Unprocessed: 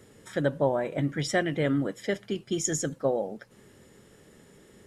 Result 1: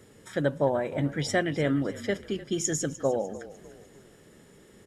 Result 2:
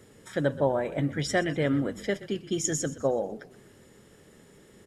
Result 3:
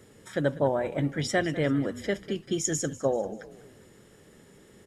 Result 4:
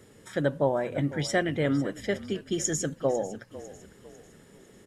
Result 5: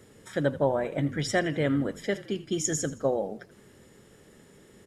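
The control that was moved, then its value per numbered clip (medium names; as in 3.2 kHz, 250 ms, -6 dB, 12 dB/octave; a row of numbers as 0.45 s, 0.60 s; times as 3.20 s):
frequency-shifting echo, time: 300 ms, 124 ms, 196 ms, 500 ms, 82 ms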